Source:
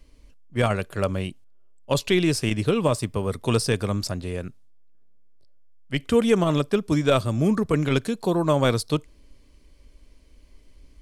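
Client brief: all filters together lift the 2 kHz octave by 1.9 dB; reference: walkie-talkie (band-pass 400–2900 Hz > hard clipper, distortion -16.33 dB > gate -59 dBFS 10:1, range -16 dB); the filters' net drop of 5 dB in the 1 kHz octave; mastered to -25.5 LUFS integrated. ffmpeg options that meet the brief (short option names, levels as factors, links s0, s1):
-af "highpass=400,lowpass=2900,equalizer=f=1000:t=o:g=-8.5,equalizer=f=2000:t=o:g=6,asoftclip=type=hard:threshold=0.133,agate=range=0.158:threshold=0.00112:ratio=10,volume=1.58"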